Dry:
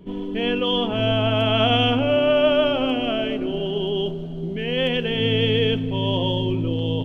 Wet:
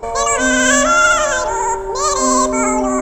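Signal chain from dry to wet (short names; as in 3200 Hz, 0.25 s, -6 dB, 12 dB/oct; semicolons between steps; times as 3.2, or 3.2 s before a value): speed mistake 33 rpm record played at 78 rpm; in parallel at -9.5 dB: soft clip -17.5 dBFS, distortion -13 dB; on the sum: gain +4.5 dB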